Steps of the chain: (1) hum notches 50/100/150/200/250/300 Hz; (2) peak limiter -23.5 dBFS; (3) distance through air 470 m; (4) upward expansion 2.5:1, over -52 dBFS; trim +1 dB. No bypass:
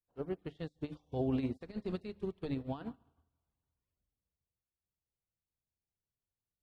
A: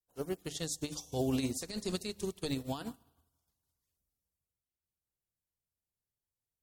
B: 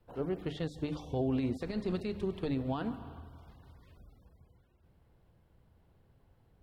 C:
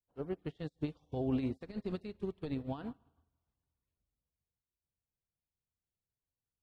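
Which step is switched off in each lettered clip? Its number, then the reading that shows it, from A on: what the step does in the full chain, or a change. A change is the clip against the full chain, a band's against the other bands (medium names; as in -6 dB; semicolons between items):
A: 3, 4 kHz band +13.5 dB; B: 4, loudness change +4.0 LU; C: 1, momentary loudness spread change -2 LU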